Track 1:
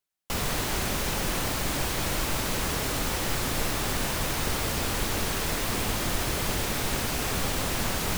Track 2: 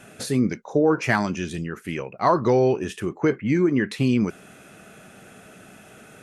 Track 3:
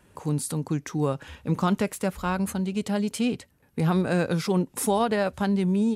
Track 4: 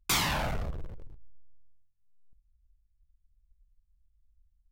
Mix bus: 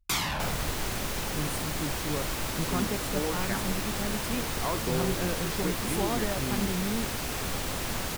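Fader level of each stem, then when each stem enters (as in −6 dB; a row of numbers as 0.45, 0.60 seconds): −4.0, −14.5, −9.0, −1.5 decibels; 0.10, 2.40, 1.10, 0.00 seconds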